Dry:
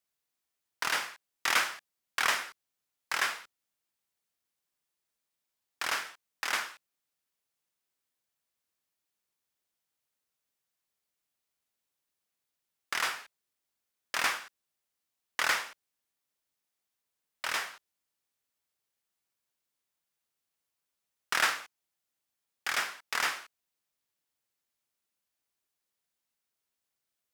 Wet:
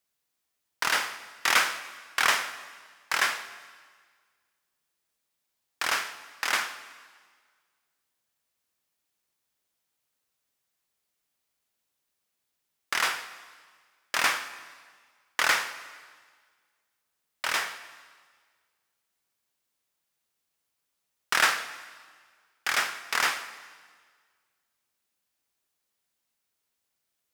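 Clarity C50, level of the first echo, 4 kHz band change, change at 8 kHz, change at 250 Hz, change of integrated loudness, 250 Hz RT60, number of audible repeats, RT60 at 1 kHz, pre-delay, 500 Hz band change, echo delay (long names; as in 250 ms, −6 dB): 13.0 dB, no echo audible, +4.5 dB, +5.0 dB, +4.5 dB, +4.5 dB, 1.6 s, no echo audible, 1.7 s, 7 ms, +5.0 dB, no echo audible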